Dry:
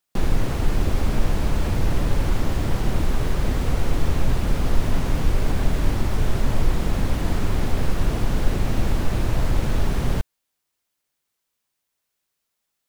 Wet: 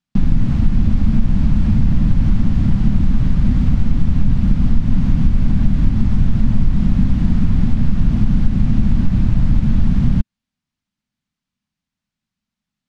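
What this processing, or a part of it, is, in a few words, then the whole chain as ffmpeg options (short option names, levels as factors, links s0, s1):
jukebox: -af "lowpass=5300,lowshelf=f=300:t=q:w=3:g=11.5,acompressor=threshold=0.562:ratio=3,volume=0.708"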